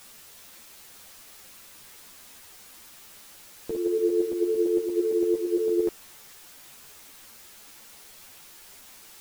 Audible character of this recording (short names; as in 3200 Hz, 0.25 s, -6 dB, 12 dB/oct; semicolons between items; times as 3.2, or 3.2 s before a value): tremolo saw up 8.8 Hz, depth 60%; a quantiser's noise floor 8-bit, dither triangular; a shimmering, thickened sound